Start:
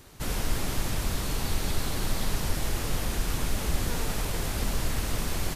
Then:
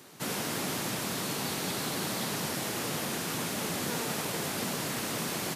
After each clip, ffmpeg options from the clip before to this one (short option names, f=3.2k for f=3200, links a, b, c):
-af "highpass=f=150:w=0.5412,highpass=f=150:w=1.3066,volume=1dB"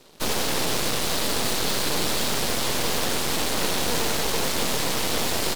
-af "equalizer=f=250:t=o:w=1:g=3,equalizer=f=500:t=o:w=1:g=11,equalizer=f=4k:t=o:w=1:g=9,aeval=exprs='0.188*(cos(1*acos(clip(val(0)/0.188,-1,1)))-cos(1*PI/2))+0.0596*(cos(6*acos(clip(val(0)/0.188,-1,1)))-cos(6*PI/2))+0.0211*(cos(7*acos(clip(val(0)/0.188,-1,1)))-cos(7*PI/2))':c=same,aeval=exprs='0.335*sin(PI/2*2*val(0)/0.335)':c=same,volume=-5.5dB"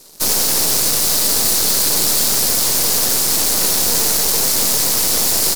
-af "aexciter=amount=2.4:drive=9.4:freq=4.5k,volume=1.5dB"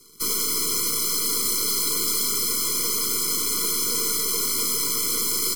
-filter_complex "[0:a]acrossover=split=230|730|2300[a][b][c][d];[a]alimiter=level_in=5dB:limit=-24dB:level=0:latency=1,volume=-5dB[e];[e][b][c][d]amix=inputs=4:normalize=0,afftfilt=real='re*eq(mod(floor(b*sr/1024/490),2),0)':imag='im*eq(mod(floor(b*sr/1024/490),2),0)':win_size=1024:overlap=0.75,volume=-5dB"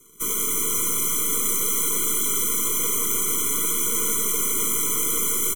-af "asuperstop=centerf=4700:order=8:qfactor=2.5,aecho=1:1:164|328|492|656|820|984|1148|1312:0.501|0.296|0.174|0.103|0.0607|0.0358|0.0211|0.0125"